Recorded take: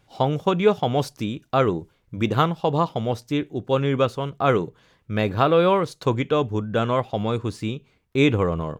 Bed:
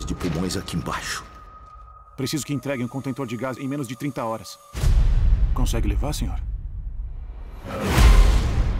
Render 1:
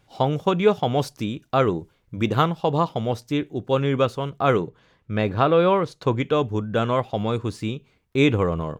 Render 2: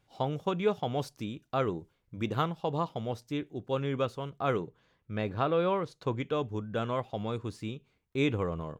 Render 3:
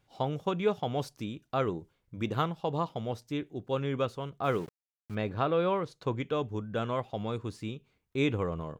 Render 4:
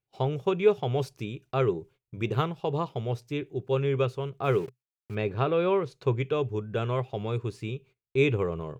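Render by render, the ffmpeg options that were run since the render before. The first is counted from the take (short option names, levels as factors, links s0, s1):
-filter_complex "[0:a]asettb=1/sr,asplit=3[s0][s1][s2];[s0]atrim=end=4.604[s3];[s1]atrim=start=4.6:end=6.2,asetpts=PTS-STARTPTS,afade=t=in:d=0.004:c=qsin,afade=t=out:st=1.596:d=0.004:c=qsin,lowpass=f=3900:p=1[s4];[s2]atrim=start=6.196[s5];[s3][s4]acrossfade=d=0.004:c1=hsin:c2=qsin[s6];[s6][s5]acrossfade=d=0.004:c1=qsin:c2=hsin"
-af "volume=0.316"
-filter_complex "[0:a]asplit=3[s0][s1][s2];[s0]afade=t=out:st=4.43:d=0.02[s3];[s1]aeval=exprs='val(0)*gte(abs(val(0)),0.00531)':c=same,afade=t=in:st=4.43:d=0.02,afade=t=out:st=5.14:d=0.02[s4];[s2]afade=t=in:st=5.14:d=0.02[s5];[s3][s4][s5]amix=inputs=3:normalize=0"
-af "agate=range=0.0794:threshold=0.00141:ratio=16:detection=peak,equalizer=f=125:t=o:w=0.33:g=10,equalizer=f=250:t=o:w=0.33:g=-5,equalizer=f=400:t=o:w=0.33:g=10,equalizer=f=2500:t=o:w=0.33:g=7"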